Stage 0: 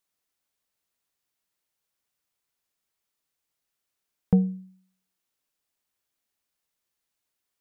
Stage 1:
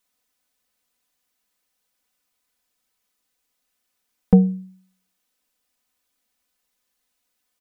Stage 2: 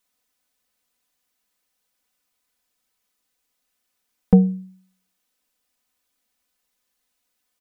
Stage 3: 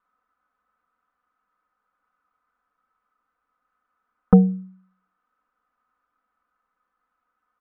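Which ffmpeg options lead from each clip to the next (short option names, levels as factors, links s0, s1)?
-af "aecho=1:1:4:0.9,volume=1.68"
-af anull
-af "lowpass=f=1300:t=q:w=8.2"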